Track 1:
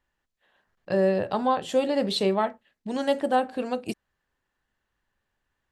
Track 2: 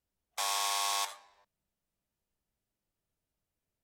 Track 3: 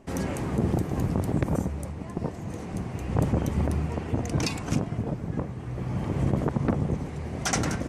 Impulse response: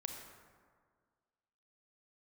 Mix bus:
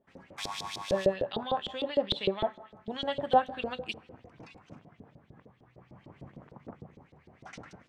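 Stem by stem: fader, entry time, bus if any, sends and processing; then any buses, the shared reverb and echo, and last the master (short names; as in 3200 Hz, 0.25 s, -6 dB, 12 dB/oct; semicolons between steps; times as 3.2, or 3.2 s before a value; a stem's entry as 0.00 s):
-1.0 dB, 0.00 s, send -10 dB, bell 3400 Hz +12.5 dB 0.39 oct
+2.0 dB, 0.00 s, no send, high shelf 5200 Hz +10.5 dB; auto duck -13 dB, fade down 1.90 s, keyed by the first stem
-16.0 dB, 0.00 s, no send, de-hum 55.96 Hz, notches 27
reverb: on, RT60 1.8 s, pre-delay 28 ms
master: vocal rider within 4 dB 2 s; LFO band-pass saw up 6.6 Hz 430–4500 Hz; tone controls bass +13 dB, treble -2 dB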